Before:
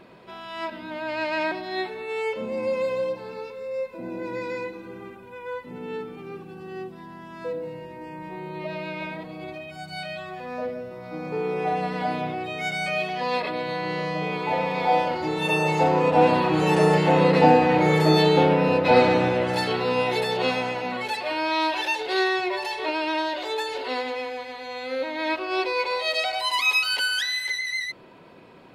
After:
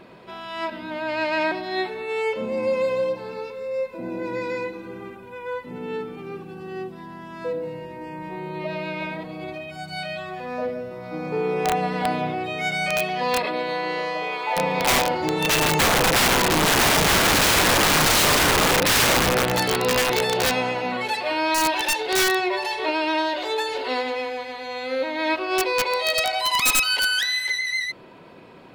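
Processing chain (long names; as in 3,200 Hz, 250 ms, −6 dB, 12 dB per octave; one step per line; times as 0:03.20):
0:13.46–0:14.55: high-pass filter 180 Hz → 750 Hz 12 dB per octave
wrap-around overflow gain 16 dB
level +3 dB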